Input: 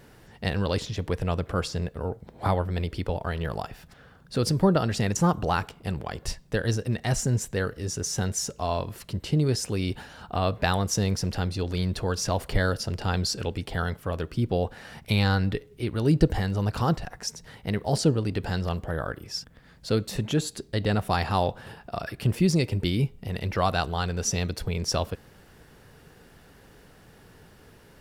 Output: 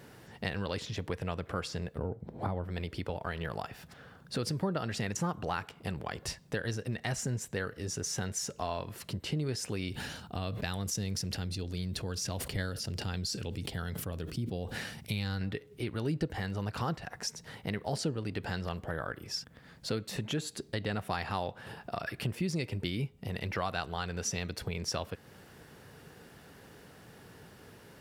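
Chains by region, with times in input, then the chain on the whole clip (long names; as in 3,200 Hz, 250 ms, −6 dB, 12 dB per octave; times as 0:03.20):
0:01.98–0:02.64: tilt shelving filter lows +7.5 dB, about 850 Hz + downward compressor 4 to 1, threshold −20 dBFS
0:09.89–0:15.41: parametric band 1,000 Hz −10.5 dB 2.8 octaves + level that may fall only so fast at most 56 dB per second
whole clip: high-pass filter 83 Hz; dynamic equaliser 2,000 Hz, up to +5 dB, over −43 dBFS, Q 0.89; downward compressor 2.5 to 1, threshold −35 dBFS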